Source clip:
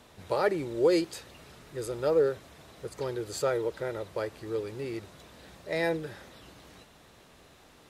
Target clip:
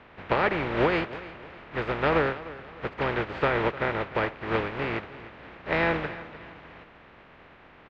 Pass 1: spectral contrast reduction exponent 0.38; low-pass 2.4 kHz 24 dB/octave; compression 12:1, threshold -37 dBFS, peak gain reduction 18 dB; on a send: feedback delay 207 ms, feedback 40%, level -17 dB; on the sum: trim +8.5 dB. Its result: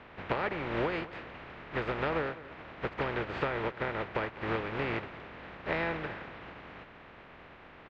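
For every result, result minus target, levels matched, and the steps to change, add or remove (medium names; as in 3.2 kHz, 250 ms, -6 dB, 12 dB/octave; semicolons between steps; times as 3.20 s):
compression: peak gain reduction +8.5 dB; echo 95 ms early
change: compression 12:1, threshold -27.5 dBFS, peak gain reduction 9.5 dB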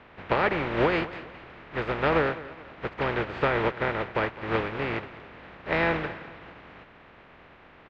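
echo 95 ms early
change: feedback delay 302 ms, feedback 40%, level -17 dB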